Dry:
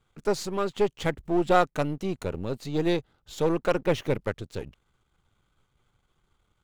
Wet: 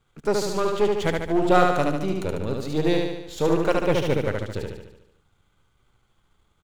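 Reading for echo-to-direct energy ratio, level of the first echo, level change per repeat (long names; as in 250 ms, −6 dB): −1.5 dB, −3.0 dB, −5.0 dB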